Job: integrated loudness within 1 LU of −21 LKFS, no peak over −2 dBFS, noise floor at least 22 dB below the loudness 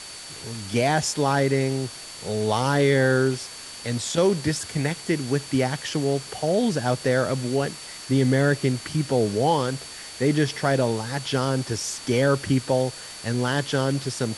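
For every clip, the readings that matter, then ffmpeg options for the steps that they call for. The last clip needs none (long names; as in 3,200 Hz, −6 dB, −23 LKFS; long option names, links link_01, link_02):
interfering tone 4,500 Hz; level of the tone −42 dBFS; background noise floor −39 dBFS; target noise floor −46 dBFS; integrated loudness −24.0 LKFS; sample peak −7.5 dBFS; target loudness −21.0 LKFS
→ -af "bandreject=frequency=4500:width=30"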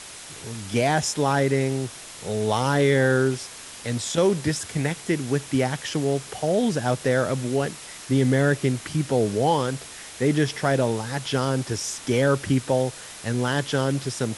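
interfering tone none found; background noise floor −41 dBFS; target noise floor −46 dBFS
→ -af "afftdn=noise_reduction=6:noise_floor=-41"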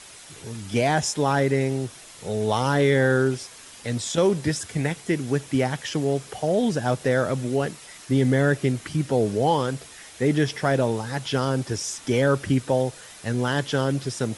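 background noise floor −45 dBFS; target noise floor −46 dBFS
→ -af "afftdn=noise_reduction=6:noise_floor=-45"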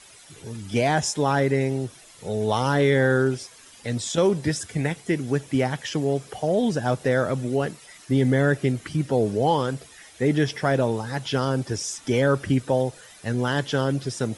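background noise floor −49 dBFS; integrated loudness −24.0 LKFS; sample peak −8.0 dBFS; target loudness −21.0 LKFS
→ -af "volume=3dB"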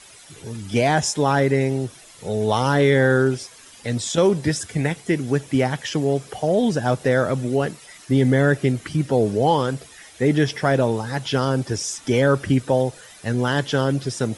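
integrated loudness −21.0 LKFS; sample peak −5.0 dBFS; background noise floor −46 dBFS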